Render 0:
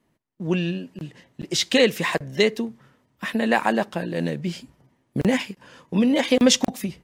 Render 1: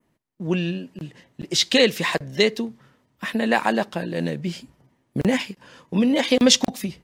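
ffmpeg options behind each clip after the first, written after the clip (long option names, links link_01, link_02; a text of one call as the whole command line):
ffmpeg -i in.wav -af "adynamicequalizer=threshold=0.0178:dfrequency=4300:dqfactor=1.4:tfrequency=4300:tqfactor=1.4:attack=5:release=100:ratio=0.375:range=2.5:mode=boostabove:tftype=bell" out.wav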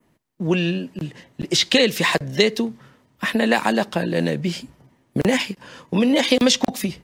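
ffmpeg -i in.wav -filter_complex "[0:a]acrossover=split=310|3100[link_01][link_02][link_03];[link_01]acompressor=threshold=-28dB:ratio=4[link_04];[link_02]acompressor=threshold=-23dB:ratio=4[link_05];[link_03]acompressor=threshold=-27dB:ratio=4[link_06];[link_04][link_05][link_06]amix=inputs=3:normalize=0,volume=6dB" out.wav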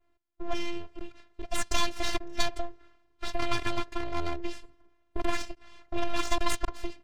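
ffmpeg -i in.wav -af "aeval=exprs='abs(val(0))':channel_layout=same,adynamicsmooth=sensitivity=3:basefreq=5300,afftfilt=real='hypot(re,im)*cos(PI*b)':imag='0':win_size=512:overlap=0.75,volume=-5dB" out.wav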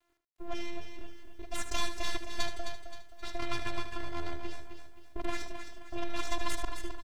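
ffmpeg -i in.wav -filter_complex "[0:a]asplit=2[link_01][link_02];[link_02]aecho=0:1:263|526|789|1052:0.398|0.155|0.0606|0.0236[link_03];[link_01][link_03]amix=inputs=2:normalize=0,acrusher=bits=10:mix=0:aa=0.000001,asplit=2[link_04][link_05];[link_05]aecho=0:1:76:0.316[link_06];[link_04][link_06]amix=inputs=2:normalize=0,volume=-6dB" out.wav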